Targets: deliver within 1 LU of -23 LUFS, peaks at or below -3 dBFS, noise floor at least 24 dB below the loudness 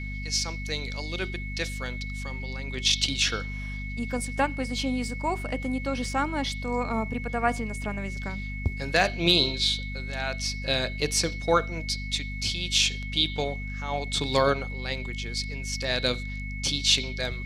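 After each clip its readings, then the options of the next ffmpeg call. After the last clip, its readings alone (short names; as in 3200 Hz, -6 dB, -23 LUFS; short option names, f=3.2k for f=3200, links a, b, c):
hum 50 Hz; harmonics up to 250 Hz; hum level -32 dBFS; steady tone 2200 Hz; tone level -38 dBFS; loudness -27.5 LUFS; peak -8.0 dBFS; loudness target -23.0 LUFS
-> -af "bandreject=f=50:t=h:w=4,bandreject=f=100:t=h:w=4,bandreject=f=150:t=h:w=4,bandreject=f=200:t=h:w=4,bandreject=f=250:t=h:w=4"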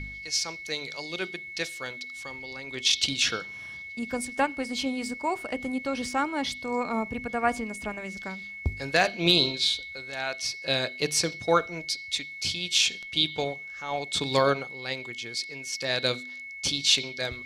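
hum none; steady tone 2200 Hz; tone level -38 dBFS
-> -af "bandreject=f=2.2k:w=30"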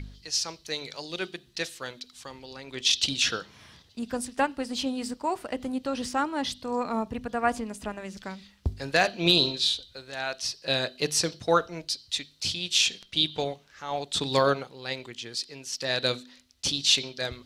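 steady tone none; loudness -27.5 LUFS; peak -8.0 dBFS; loudness target -23.0 LUFS
-> -af "volume=4.5dB"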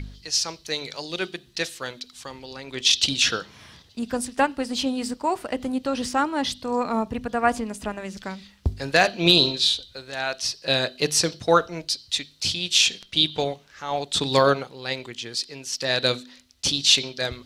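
loudness -23.0 LUFS; peak -3.5 dBFS; noise floor -54 dBFS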